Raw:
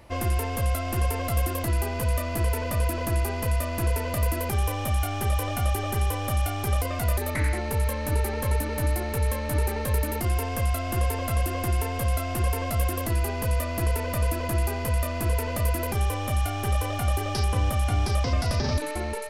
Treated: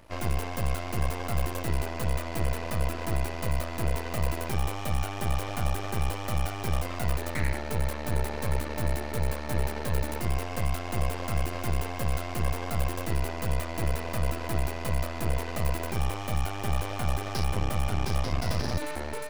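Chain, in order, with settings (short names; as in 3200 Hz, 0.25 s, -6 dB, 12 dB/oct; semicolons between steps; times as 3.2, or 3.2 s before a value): tracing distortion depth 0.08 ms; half-wave rectifier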